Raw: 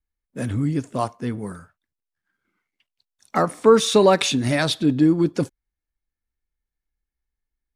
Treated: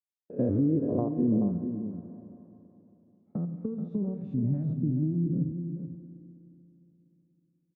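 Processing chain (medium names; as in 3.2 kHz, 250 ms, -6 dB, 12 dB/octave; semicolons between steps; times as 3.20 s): spectrogram pixelated in time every 100 ms; expander -38 dBFS; bass shelf 84 Hz -11 dB; compression 10:1, threshold -26 dBFS, peak gain reduction 15.5 dB; low-pass sweep 480 Hz -> 170 Hz, 0.82–1.78 s; peaking EQ 430 Hz +3.5 dB 2.8 oct; echo from a far wall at 74 m, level -9 dB; on a send at -11 dB: reverberation RT60 3.3 s, pre-delay 35 ms; on the sum: tape noise reduction on one side only encoder only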